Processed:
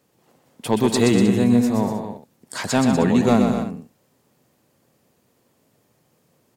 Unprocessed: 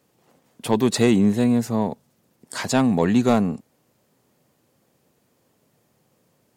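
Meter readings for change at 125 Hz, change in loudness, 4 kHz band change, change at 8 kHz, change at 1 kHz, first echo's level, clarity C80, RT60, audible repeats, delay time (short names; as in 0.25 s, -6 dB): +2.0 dB, +1.5 dB, +1.5 dB, +1.5 dB, +1.5 dB, -5.5 dB, none, none, 4, 0.124 s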